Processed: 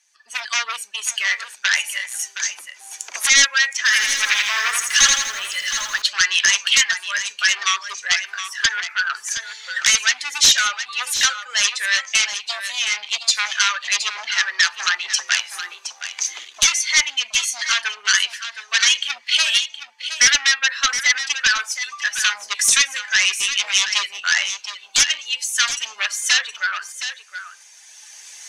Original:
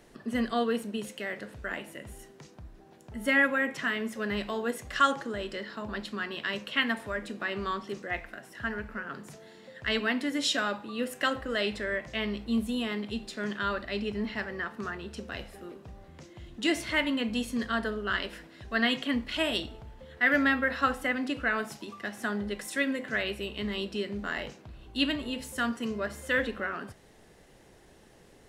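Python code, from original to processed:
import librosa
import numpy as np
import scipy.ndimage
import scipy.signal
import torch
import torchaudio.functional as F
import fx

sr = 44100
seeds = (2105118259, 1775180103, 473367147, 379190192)

y = fx.bin_expand(x, sr, power=1.5)
y = fx.recorder_agc(y, sr, target_db=-17.0, rise_db_per_s=12.0, max_gain_db=30)
y = fx.fold_sine(y, sr, drive_db=16, ceiling_db=-9.0)
y = scipy.signal.sosfilt(scipy.signal.bessel(4, 2500.0, 'highpass', norm='mag', fs=sr, output='sos'), y)
y = fx.peak_eq(y, sr, hz=6200.0, db=11.5, octaves=0.31)
y = np.clip(10.0 ** (5.5 / 20.0) * y, -1.0, 1.0) / 10.0 ** (5.5 / 20.0)
y = scipy.signal.sosfilt(scipy.signal.butter(2, 9700.0, 'lowpass', fs=sr, output='sos'), y)
y = fx.tilt_eq(y, sr, slope=-2.5)
y = y + 10.0 ** (-10.5 / 20.0) * np.pad(y, (int(718 * sr / 1000.0), 0))[:len(y)]
y = fx.echo_crushed(y, sr, ms=82, feedback_pct=55, bits=8, wet_db=-3.5, at=(3.77, 6.02))
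y = F.gain(torch.from_numpy(y), 6.0).numpy()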